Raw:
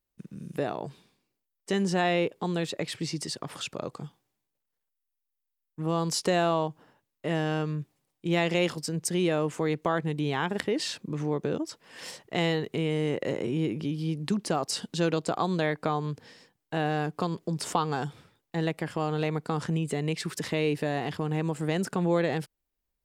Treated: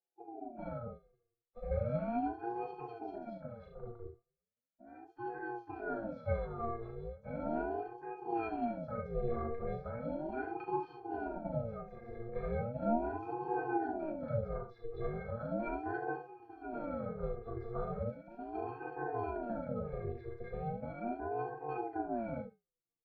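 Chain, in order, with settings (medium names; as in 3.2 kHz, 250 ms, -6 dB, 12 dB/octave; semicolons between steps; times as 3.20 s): harmony voices -7 st -12 dB, +4 st -12 dB; distance through air 290 m; wow and flutter 25 cents; graphic EQ with 31 bands 160 Hz +8 dB, 250 Hz +8 dB, 400 Hz +8 dB, 800 Hz +7 dB; on a send: early reflections 39 ms -5 dB, 72 ms -7 dB; on the sum: ever faster or slower copies 102 ms, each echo +2 st, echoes 2, each echo -6 dB; static phaser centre 1.3 kHz, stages 4; pitch-class resonator A#, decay 0.21 s; ring modulator with a swept carrier 420 Hz, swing 45%, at 0.37 Hz; trim +4 dB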